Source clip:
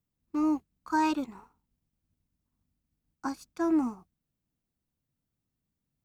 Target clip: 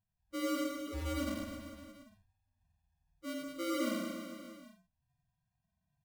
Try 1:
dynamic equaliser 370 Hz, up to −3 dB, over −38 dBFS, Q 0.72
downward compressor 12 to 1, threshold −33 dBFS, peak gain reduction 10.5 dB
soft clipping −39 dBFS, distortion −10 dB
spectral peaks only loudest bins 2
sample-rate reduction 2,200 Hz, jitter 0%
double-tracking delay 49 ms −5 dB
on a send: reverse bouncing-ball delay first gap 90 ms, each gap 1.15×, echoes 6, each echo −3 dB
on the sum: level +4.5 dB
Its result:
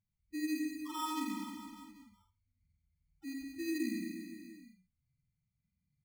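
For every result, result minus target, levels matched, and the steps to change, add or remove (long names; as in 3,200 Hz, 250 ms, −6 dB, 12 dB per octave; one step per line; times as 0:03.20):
sample-rate reduction: distortion −11 dB; downward compressor: peak gain reduction +7.5 dB
change: sample-rate reduction 860 Hz, jitter 0%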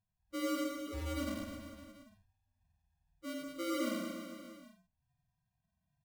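downward compressor: peak gain reduction +7.5 dB
change: downward compressor 12 to 1, threshold −25 dBFS, peak gain reduction 3 dB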